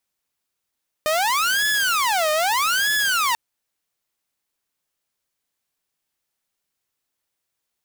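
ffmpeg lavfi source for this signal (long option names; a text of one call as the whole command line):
ffmpeg -f lavfi -i "aevalsrc='0.168*(2*mod((1161*t-549/(2*PI*0.8)*sin(2*PI*0.8*t)),1)-1)':duration=2.29:sample_rate=44100" out.wav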